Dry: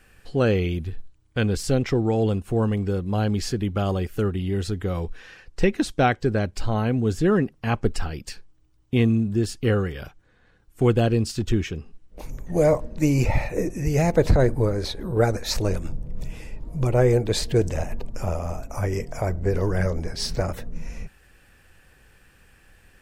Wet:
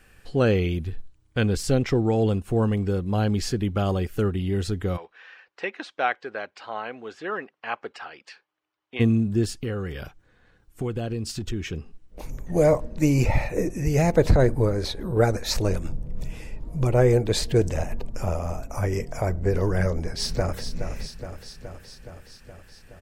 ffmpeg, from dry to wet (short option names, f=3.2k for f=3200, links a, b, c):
-filter_complex "[0:a]asplit=3[a][b][c];[a]afade=t=out:st=4.96:d=0.02[d];[b]highpass=770,lowpass=2.9k,afade=t=in:st=4.96:d=0.02,afade=t=out:st=8.99:d=0.02[e];[c]afade=t=in:st=8.99:d=0.02[f];[d][e][f]amix=inputs=3:normalize=0,asettb=1/sr,asplit=3[g][h][i];[g]atrim=end=9.564[j];[h]atrim=start=9.56:end=11.73,asetpts=PTS-STARTPTS,afade=t=in:d=0.004:c=qsin,afade=t=out:st=2.166:d=0.004:c=qsin,acompressor=threshold=-27dB:ratio=3:attack=3.2:release=140:knee=1:detection=peak[k];[i]atrim=start=11.726[l];[j][k]acrossfade=d=0.004:c1=hsin:c2=qsin[m];[m][l]acrossfade=d=0.004:c1=qsin:c2=hsin,asplit=2[n][o];[o]afade=t=in:st=19.93:d=0.01,afade=t=out:st=20.65:d=0.01,aecho=0:1:420|840|1260|1680|2100|2520|2940|3360|3780|4200|4620:0.354813|0.248369|0.173859|0.121701|0.0851907|0.0596335|0.0417434|0.0292204|0.0204543|0.014318|0.0100226[p];[n][p]amix=inputs=2:normalize=0"